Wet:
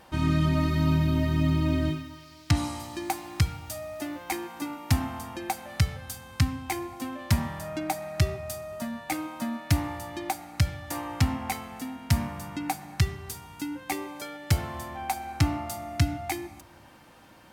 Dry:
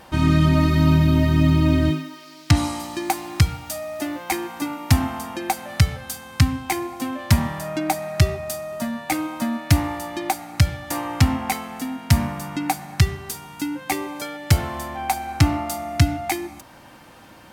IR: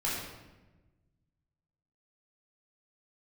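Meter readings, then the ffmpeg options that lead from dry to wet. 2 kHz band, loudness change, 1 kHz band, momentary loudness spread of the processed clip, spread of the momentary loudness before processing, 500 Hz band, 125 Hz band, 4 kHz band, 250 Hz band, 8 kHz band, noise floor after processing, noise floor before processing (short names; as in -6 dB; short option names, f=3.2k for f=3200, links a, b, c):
-7.0 dB, -7.5 dB, -7.0 dB, 12 LU, 12 LU, -7.0 dB, -7.0 dB, -7.0 dB, -7.5 dB, -7.0 dB, -52 dBFS, -46 dBFS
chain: -filter_complex "[0:a]asplit=2[a][b];[1:a]atrim=start_sample=2205[c];[b][c]afir=irnorm=-1:irlink=0,volume=-26dB[d];[a][d]amix=inputs=2:normalize=0,volume=-7.5dB"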